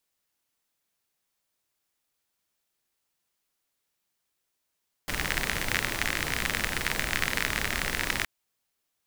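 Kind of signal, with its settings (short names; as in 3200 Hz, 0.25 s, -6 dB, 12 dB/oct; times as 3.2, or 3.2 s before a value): rain from filtered ticks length 3.17 s, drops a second 48, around 1900 Hz, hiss -1.5 dB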